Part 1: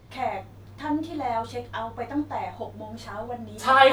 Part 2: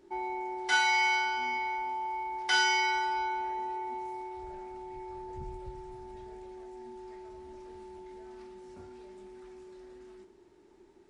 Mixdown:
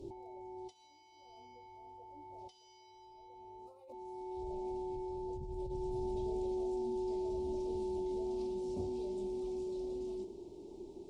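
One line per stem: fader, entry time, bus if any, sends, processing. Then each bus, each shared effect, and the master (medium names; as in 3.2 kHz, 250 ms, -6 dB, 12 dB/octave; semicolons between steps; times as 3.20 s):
-9.0 dB, 0.00 s, no send, local Wiener filter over 25 samples; static phaser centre 890 Hz, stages 6
+3.0 dB, 0.00 s, no send, treble shelf 5.1 kHz -7.5 dB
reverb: none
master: compressor with a negative ratio -43 dBFS, ratio -1; Butterworth band-stop 1.6 kHz, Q 0.55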